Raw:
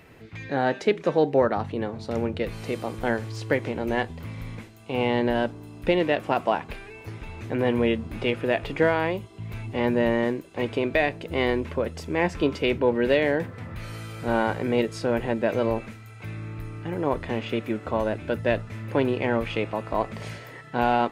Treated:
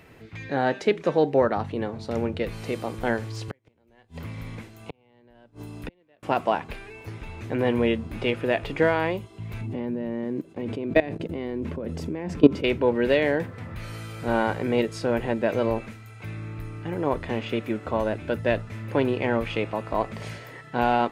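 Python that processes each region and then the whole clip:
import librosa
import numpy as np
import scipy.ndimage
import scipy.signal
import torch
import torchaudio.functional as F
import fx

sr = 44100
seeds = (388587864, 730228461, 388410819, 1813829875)

y = fx.chain(x, sr, fx.gate_flip(shuts_db=-19.0, range_db=-39),
    fx.band_squash(depth_pct=70), at=(3.48, 6.23))
y = fx.chain(y, sr, fx.level_steps(step_db=20),
    fx.peak_eq(hz=220.0, db=13.5, octaves=2.6), at=(9.61, 12.64))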